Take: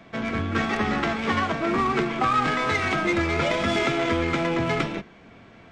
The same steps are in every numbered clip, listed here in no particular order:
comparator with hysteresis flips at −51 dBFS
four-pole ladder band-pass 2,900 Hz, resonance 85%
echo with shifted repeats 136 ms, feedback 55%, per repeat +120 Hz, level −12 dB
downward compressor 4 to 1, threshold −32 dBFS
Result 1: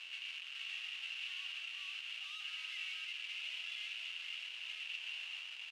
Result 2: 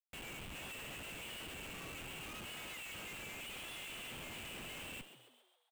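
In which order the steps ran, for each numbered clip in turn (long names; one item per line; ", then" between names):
echo with shifted repeats, then downward compressor, then comparator with hysteresis, then four-pole ladder band-pass
downward compressor, then four-pole ladder band-pass, then comparator with hysteresis, then echo with shifted repeats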